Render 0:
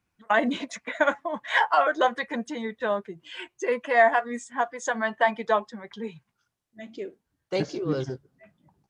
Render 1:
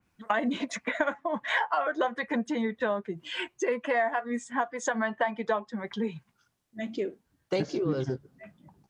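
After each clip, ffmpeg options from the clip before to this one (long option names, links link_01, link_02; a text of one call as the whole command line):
ffmpeg -i in.wav -af "equalizer=frequency=220:width=1.5:gain=3,acompressor=threshold=-31dB:ratio=4,adynamicequalizer=threshold=0.00251:dfrequency=3200:dqfactor=0.7:tfrequency=3200:tqfactor=0.7:attack=5:release=100:ratio=0.375:range=3:mode=cutabove:tftype=highshelf,volume=5dB" out.wav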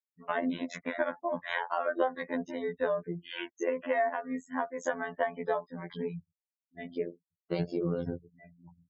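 ffmpeg -i in.wav -af "equalizer=frequency=125:width_type=o:width=1:gain=11,equalizer=frequency=500:width_type=o:width=1:gain=5,equalizer=frequency=8000:width_type=o:width=1:gain=-4,afftfilt=real='re*gte(hypot(re,im),0.00891)':imag='im*gte(hypot(re,im),0.00891)':win_size=1024:overlap=0.75,afftfilt=real='hypot(re,im)*cos(PI*b)':imag='0':win_size=2048:overlap=0.75,volume=-2.5dB" out.wav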